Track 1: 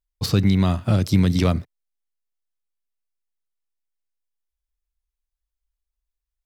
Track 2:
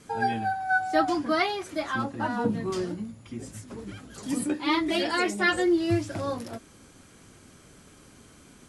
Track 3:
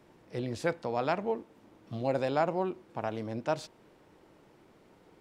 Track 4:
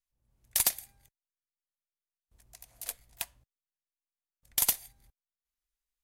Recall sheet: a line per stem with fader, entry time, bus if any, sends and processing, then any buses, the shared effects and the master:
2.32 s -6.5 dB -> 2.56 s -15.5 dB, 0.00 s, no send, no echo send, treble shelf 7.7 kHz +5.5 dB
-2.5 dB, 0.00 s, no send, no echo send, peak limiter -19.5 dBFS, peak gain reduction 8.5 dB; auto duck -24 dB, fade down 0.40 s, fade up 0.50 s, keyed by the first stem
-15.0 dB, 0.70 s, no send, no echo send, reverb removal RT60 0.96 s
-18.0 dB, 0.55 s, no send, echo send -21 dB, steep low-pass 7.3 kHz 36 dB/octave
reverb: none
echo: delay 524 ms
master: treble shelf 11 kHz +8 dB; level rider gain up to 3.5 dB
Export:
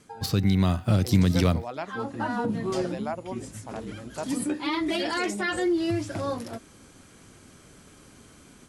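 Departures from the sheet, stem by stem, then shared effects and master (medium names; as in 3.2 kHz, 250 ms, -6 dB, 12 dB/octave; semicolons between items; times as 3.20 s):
stem 3 -15.0 dB -> -7.5 dB; master: missing treble shelf 11 kHz +8 dB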